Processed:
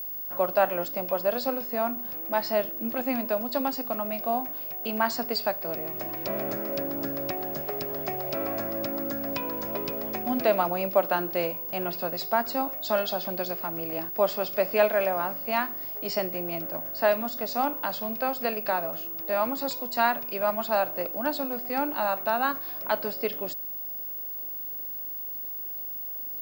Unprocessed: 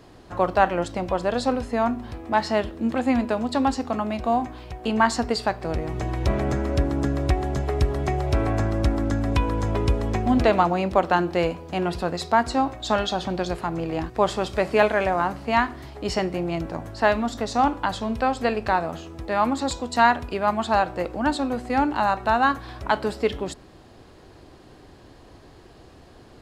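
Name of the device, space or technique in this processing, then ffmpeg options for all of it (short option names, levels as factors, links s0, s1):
old television with a line whistle: -af "highpass=f=160:w=0.5412,highpass=f=160:w=1.3066,equalizer=f=600:t=q:w=4:g=9,equalizer=f=1400:t=q:w=4:g=3,equalizer=f=2500:t=q:w=4:g=5,equalizer=f=4900:t=q:w=4:g=10,lowpass=f=8400:w=0.5412,lowpass=f=8400:w=1.3066,aeval=exprs='val(0)+0.0631*sin(2*PI*15625*n/s)':c=same,volume=0.376"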